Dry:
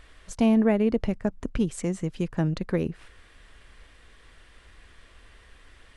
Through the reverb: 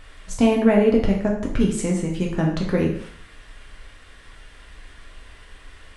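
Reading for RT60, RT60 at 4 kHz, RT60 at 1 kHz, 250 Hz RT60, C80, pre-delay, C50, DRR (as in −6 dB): 0.60 s, 0.60 s, 0.60 s, 0.60 s, 9.0 dB, 4 ms, 6.0 dB, −1.5 dB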